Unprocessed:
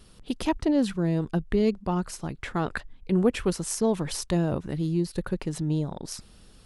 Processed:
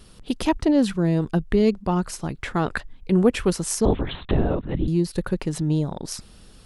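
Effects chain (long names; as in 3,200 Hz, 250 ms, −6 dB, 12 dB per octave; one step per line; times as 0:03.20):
0:03.85–0:04.88: linear-prediction vocoder at 8 kHz whisper
level +4.5 dB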